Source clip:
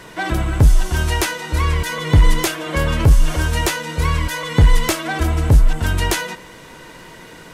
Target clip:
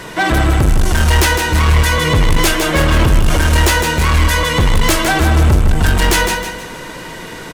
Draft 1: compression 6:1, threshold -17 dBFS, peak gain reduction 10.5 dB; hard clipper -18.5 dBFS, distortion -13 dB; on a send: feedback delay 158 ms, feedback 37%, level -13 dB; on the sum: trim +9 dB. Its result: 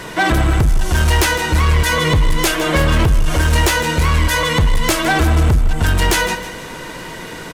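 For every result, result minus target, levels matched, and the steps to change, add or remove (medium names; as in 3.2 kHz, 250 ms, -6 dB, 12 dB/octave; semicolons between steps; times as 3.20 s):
compression: peak gain reduction +10.5 dB; echo-to-direct -7 dB
remove: compression 6:1, threshold -17 dBFS, peak gain reduction 10.5 dB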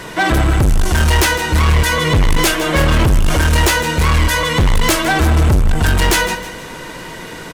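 echo-to-direct -7 dB
change: feedback delay 158 ms, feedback 37%, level -6 dB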